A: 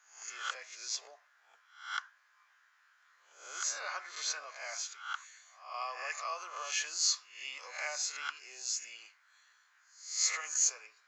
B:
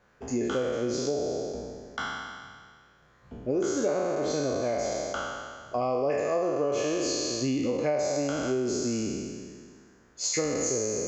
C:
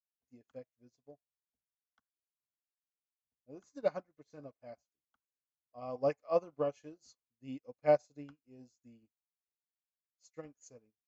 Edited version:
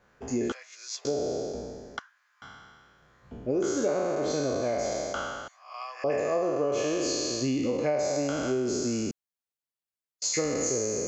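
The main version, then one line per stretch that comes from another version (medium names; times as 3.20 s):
B
0.52–1.05 s: from A
1.99–2.42 s: from A
5.48–6.04 s: from A
9.11–10.22 s: from C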